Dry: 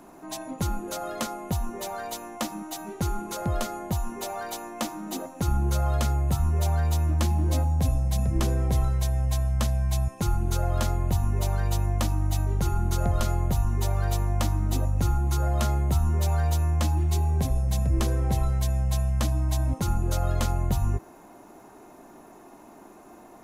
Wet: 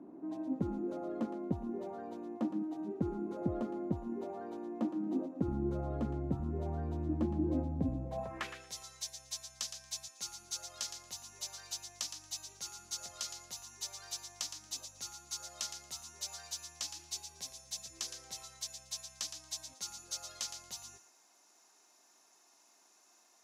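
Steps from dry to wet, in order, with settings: band-pass sweep 290 Hz -> 5.5 kHz, 7.99–8.67 s; on a send: thinning echo 115 ms, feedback 16%, high-pass 1.1 kHz, level -8 dB; on the sum: trim +2.5 dB

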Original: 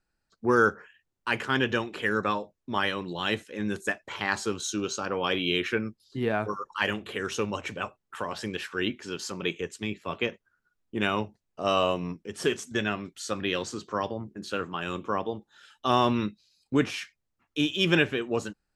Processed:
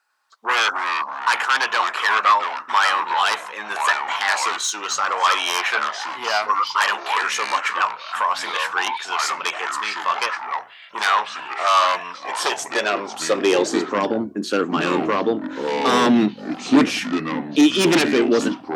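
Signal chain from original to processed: sine folder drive 13 dB, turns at -8 dBFS; ever faster or slower copies 102 ms, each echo -5 st, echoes 3, each echo -6 dB; high-pass sweep 1 kHz -> 270 Hz, 12.10–13.93 s; trim -6.5 dB

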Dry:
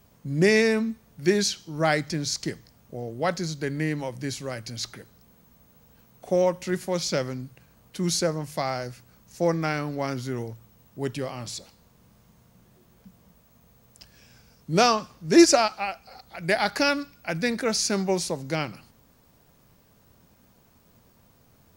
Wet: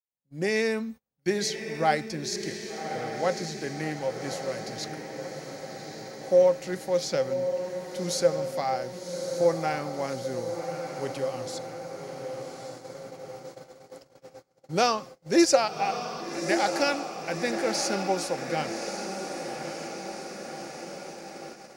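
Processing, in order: fade-in on the opening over 0.66 s; bass shelf 160 Hz -6.5 dB; small resonant body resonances 530/780 Hz, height 12 dB, ringing for 100 ms; on a send: echo that smears into a reverb 1149 ms, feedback 65%, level -7.5 dB; on the sum: gate -37 dBFS, range -28 dB; trim -4.5 dB

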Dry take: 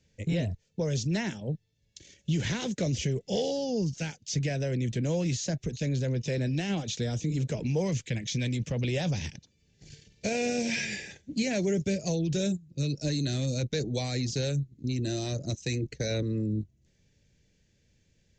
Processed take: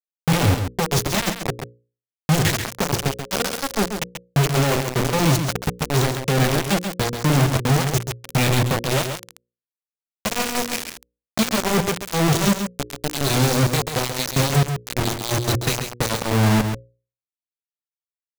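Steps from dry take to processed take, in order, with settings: bass shelf 75 Hz +6.5 dB; level-controlled noise filter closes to 1.2 kHz, open at -27 dBFS; dynamic bell 100 Hz, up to +4 dB, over -42 dBFS, Q 1.1; in parallel at -2 dB: peak limiter -25.5 dBFS, peak gain reduction 9 dB; on the sum: vibrato 0.51 Hz 16 cents; flange 1 Hz, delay 1.3 ms, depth 8.6 ms, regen -9%; bit crusher 4-bit; hum notches 60/120/180/240/300/360/420/480/540 Hz; delay 135 ms -7.5 dB; trim +5 dB

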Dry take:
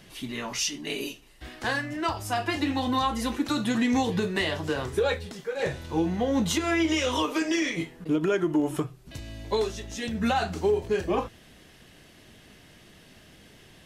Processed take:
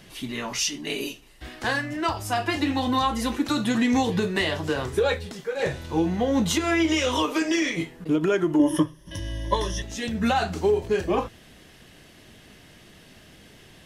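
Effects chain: 8.59–9.82 s: rippled EQ curve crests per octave 1.2, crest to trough 17 dB; trim +2.5 dB

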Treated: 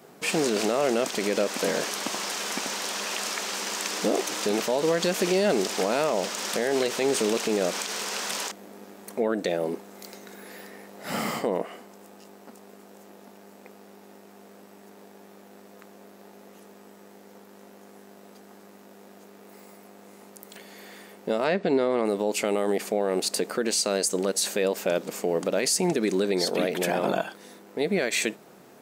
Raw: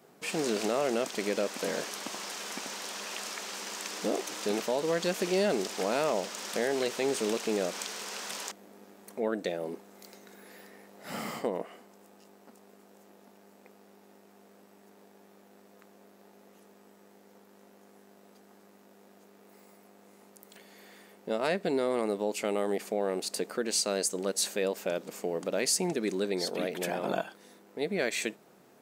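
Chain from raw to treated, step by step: 21.44–22.05 s: distance through air 110 m; peak limiter -22.5 dBFS, peak gain reduction 7 dB; trim +8 dB

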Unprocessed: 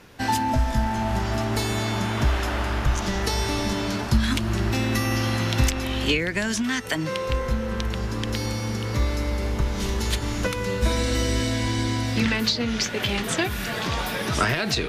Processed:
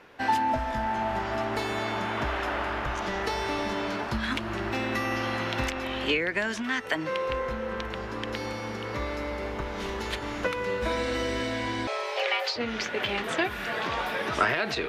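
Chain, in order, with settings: tone controls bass -14 dB, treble -15 dB; 11.87–12.56 s: frequency shift +320 Hz

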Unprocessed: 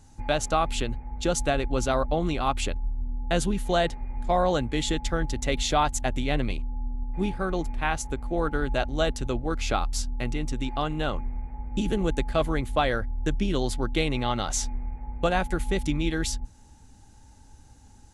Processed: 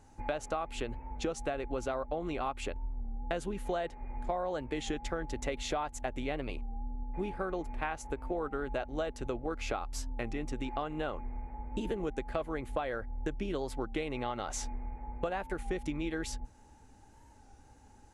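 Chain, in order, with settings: FFT filter 180 Hz 0 dB, 430 Hz +9 dB, 2.5 kHz +5 dB, 3.5 kHz -1 dB; compression, threshold -24 dBFS, peak gain reduction 12.5 dB; warped record 33 1/3 rpm, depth 100 cents; trim -7.5 dB

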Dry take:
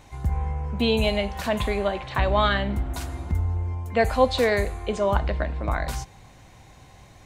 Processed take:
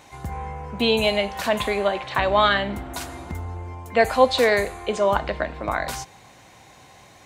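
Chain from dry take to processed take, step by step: high-pass 330 Hz 6 dB/octave; trim +4.5 dB

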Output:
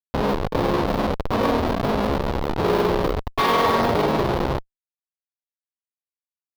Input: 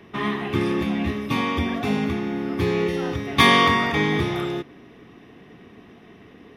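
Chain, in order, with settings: Schmitt trigger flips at -21.5 dBFS; granulator, spray 21 ms; graphic EQ 500/1000/4000/8000 Hz +10/+8/+6/-11 dB

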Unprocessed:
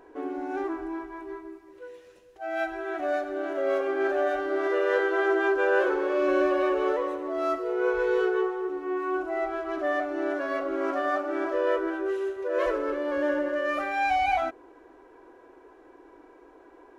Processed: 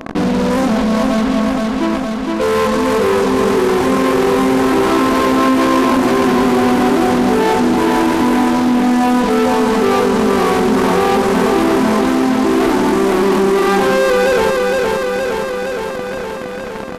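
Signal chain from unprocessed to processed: dynamic bell 360 Hz, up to -3 dB, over -34 dBFS, Q 1.6; in parallel at -4 dB: fuzz box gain 46 dB, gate -45 dBFS; on the sum: pitch shift -7 st; feedback delay 465 ms, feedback 55%, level -5 dB; level flattener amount 50%

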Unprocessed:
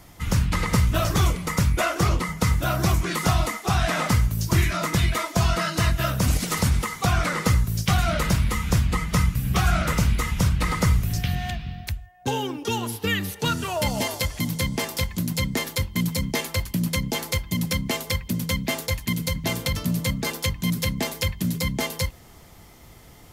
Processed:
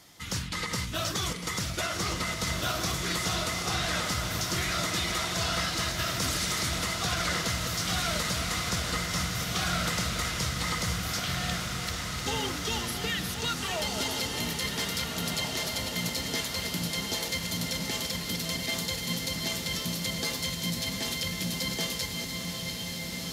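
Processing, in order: backward echo that repeats 344 ms, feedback 56%, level -10.5 dB; frequency weighting D; peak limiter -12 dBFS, peak gain reduction 9 dB; peaking EQ 2.5 kHz -7.5 dB 0.8 oct; echo that smears into a reverb 1664 ms, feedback 58%, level -3.5 dB; trim -7 dB

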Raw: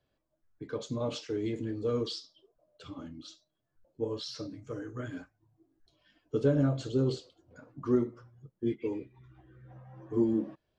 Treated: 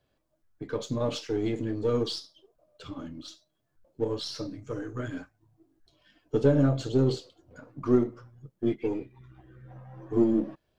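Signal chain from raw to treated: partial rectifier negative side -3 dB; trim +5.5 dB

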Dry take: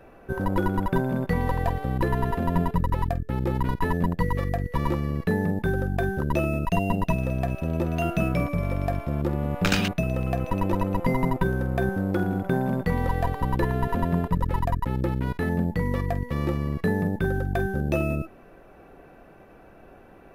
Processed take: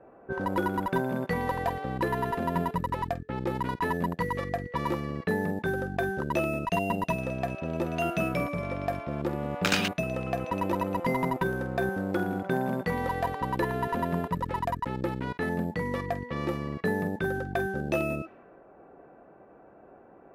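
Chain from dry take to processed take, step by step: hard clipper -13 dBFS, distortion -33 dB; high-pass 310 Hz 6 dB/octave; level-controlled noise filter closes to 930 Hz, open at -25 dBFS

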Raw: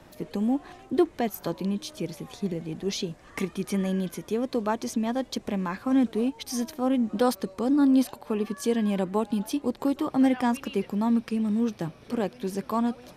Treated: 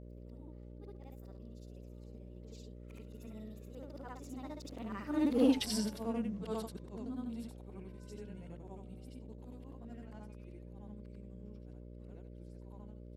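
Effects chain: short-time spectra conjugated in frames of 170 ms; Doppler pass-by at 5.54 s, 44 m/s, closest 5 m; mains buzz 60 Hz, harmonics 10, -56 dBFS -5 dB/octave; trim +5.5 dB

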